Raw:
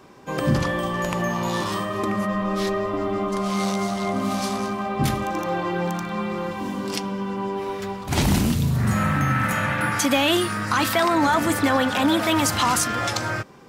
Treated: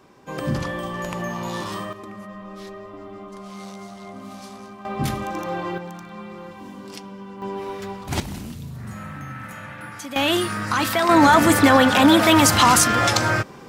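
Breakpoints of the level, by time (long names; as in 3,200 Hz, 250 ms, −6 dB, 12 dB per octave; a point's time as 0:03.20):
−4 dB
from 0:01.93 −13.5 dB
from 0:04.85 −2.5 dB
from 0:05.78 −10 dB
from 0:07.42 −2.5 dB
from 0:08.20 −13.5 dB
from 0:10.16 −0.5 dB
from 0:11.09 +6 dB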